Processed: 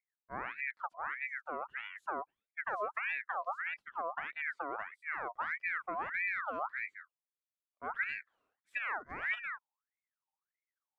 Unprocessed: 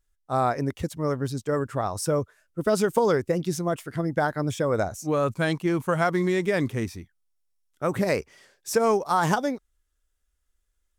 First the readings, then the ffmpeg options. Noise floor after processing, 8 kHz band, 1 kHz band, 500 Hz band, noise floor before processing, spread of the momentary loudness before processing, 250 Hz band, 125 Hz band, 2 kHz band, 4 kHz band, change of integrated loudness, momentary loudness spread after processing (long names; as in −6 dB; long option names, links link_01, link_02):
below −85 dBFS, below −40 dB, −11.0 dB, −22.0 dB, −75 dBFS, 7 LU, −29.0 dB, below −35 dB, −2.5 dB, −17.0 dB, −12.5 dB, 7 LU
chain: -af "bandpass=frequency=180:width_type=q:width=1.3:csg=0,aeval=exprs='val(0)*sin(2*PI*1500*n/s+1500*0.45/1.6*sin(2*PI*1.6*n/s))':channel_layout=same,volume=-5.5dB"